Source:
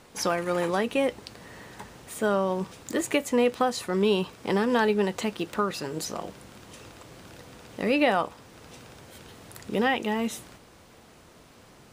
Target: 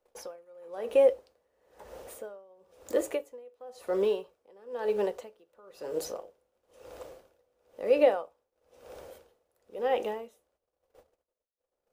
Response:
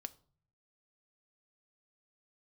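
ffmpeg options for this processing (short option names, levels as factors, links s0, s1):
-filter_complex "[0:a]equalizer=f=125:t=o:w=1:g=-12,equalizer=f=250:t=o:w=1:g=-12,equalizer=f=500:t=o:w=1:g=12,equalizer=f=1000:t=o:w=1:g=-3,equalizer=f=2000:t=o:w=1:g=-6,equalizer=f=4000:t=o:w=1:g=-6,equalizer=f=8000:t=o:w=1:g=-6,asplit=2[s0][s1];[s1]acompressor=threshold=0.0224:ratio=6,volume=1[s2];[s0][s2]amix=inputs=2:normalize=0,agate=range=0.0398:threshold=0.00708:ratio=16:detection=peak,acrossover=split=180[s3][s4];[s3]acrusher=samples=23:mix=1:aa=0.000001:lfo=1:lforange=23:lforate=3.7[s5];[s5][s4]amix=inputs=2:normalize=0[s6];[1:a]atrim=start_sample=2205,atrim=end_sample=6174[s7];[s6][s7]afir=irnorm=-1:irlink=0,aeval=exprs='val(0)*pow(10,-31*(0.5-0.5*cos(2*PI*1*n/s))/20)':c=same"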